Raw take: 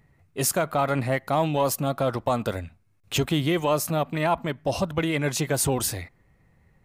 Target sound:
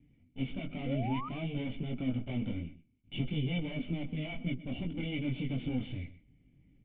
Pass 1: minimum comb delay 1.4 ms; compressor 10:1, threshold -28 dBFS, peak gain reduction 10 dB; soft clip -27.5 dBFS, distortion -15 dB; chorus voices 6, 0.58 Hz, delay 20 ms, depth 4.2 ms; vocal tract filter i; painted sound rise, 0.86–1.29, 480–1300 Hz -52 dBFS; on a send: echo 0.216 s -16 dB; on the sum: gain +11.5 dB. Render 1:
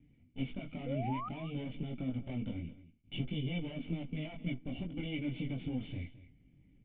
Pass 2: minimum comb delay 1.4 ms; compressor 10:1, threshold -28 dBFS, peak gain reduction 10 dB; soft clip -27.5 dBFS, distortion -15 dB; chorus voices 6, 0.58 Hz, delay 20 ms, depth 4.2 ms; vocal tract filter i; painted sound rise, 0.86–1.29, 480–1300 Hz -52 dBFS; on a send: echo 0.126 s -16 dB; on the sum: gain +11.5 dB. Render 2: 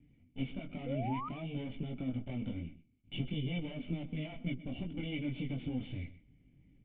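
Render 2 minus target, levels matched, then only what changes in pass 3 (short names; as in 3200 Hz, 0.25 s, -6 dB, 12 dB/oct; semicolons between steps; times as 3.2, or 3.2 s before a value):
compressor: peak gain reduction +10 dB
remove: compressor 10:1, threshold -28 dBFS, peak gain reduction 10 dB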